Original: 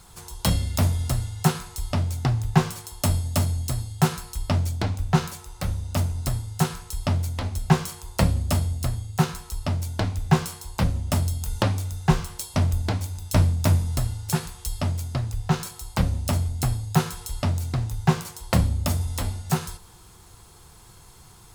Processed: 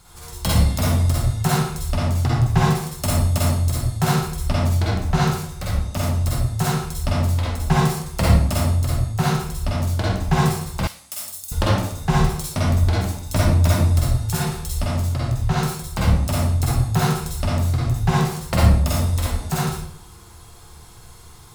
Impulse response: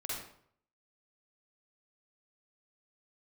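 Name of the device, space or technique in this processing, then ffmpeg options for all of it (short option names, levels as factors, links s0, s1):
bathroom: -filter_complex "[1:a]atrim=start_sample=2205[s0];[0:a][s0]afir=irnorm=-1:irlink=0,asettb=1/sr,asplit=3[s1][s2][s3];[s1]atrim=end=10.874[s4];[s2]atrim=start=10.87:end=11.52,asetpts=PTS-STARTPTS,afade=t=in:d=0.004:c=qsin,afade=t=out:st=0.646:d=0.004:c=qsin,aderivative[s5];[s3]atrim=start=11.516[s6];[s4][s5]acrossfade=d=0.004:c1=hsin:c2=qsin[s7];[s7][s6]acrossfade=d=0.004:c1=qsin:c2=hsin,volume=1.5"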